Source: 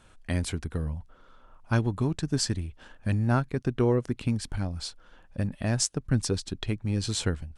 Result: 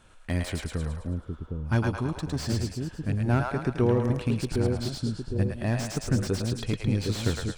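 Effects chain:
0:01.99–0:03.21: tube saturation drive 22 dB, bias 0.5
echo with a time of its own for lows and highs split 520 Hz, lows 760 ms, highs 108 ms, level −3 dB
slew-rate limiting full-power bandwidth 80 Hz

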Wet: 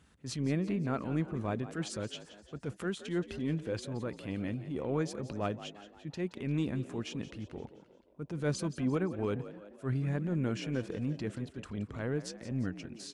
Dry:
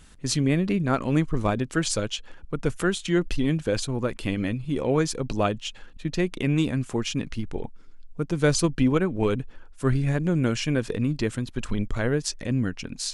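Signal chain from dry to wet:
high-pass filter 61 Hz 24 dB per octave
high-shelf EQ 3,100 Hz −9 dB
transient designer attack −7 dB, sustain 0 dB
on a send: echo with shifted repeats 174 ms, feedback 51%, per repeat +51 Hz, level −14 dB
on the sum: level −8 dB

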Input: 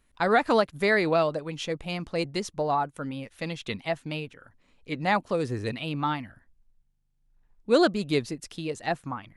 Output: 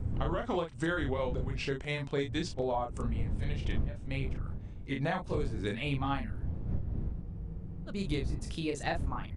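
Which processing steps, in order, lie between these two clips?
pitch glide at a constant tempo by −4 semitones ending unshifted
wind on the microphone 93 Hz −27 dBFS
downward compressor 16 to 1, threshold −29 dBFS, peak gain reduction 22 dB
double-tracking delay 36 ms −5 dB
frozen spectrum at 0:07.25, 0.63 s

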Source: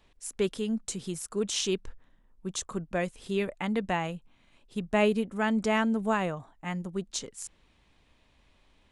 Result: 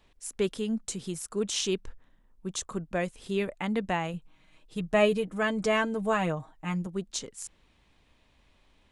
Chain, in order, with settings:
0:04.13–0:06.87: comb filter 6.4 ms, depth 67%

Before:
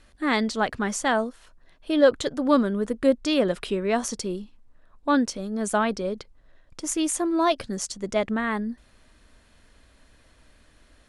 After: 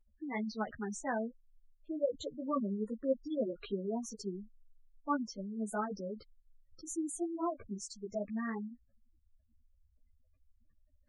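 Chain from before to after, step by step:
gate on every frequency bin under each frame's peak −10 dB strong
string-ensemble chorus
level −9 dB

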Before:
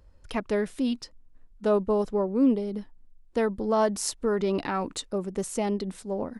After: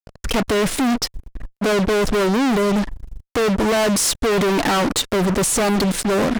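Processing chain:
fuzz pedal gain 48 dB, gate −48 dBFS
highs frequency-modulated by the lows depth 0.21 ms
level −3 dB

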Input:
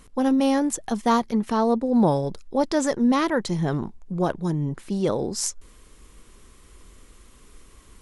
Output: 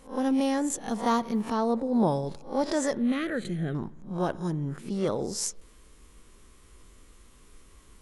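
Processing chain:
peak hold with a rise ahead of every peak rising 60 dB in 0.31 s
0:00.90–0:01.53: floating-point word with a short mantissa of 6 bits
0:02.97–0:03.75: phaser with its sweep stopped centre 2,300 Hz, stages 4
spring reverb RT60 1.1 s, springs 56 ms, DRR 19.5 dB
level −5.5 dB

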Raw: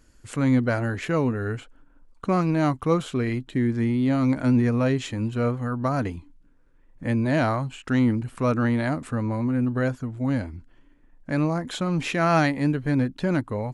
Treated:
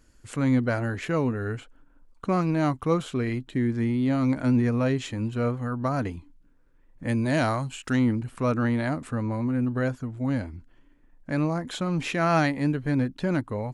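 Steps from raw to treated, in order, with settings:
0:07.07–0:07.95: high-shelf EQ 5,600 Hz → 3,900 Hz +11.5 dB
level −2 dB

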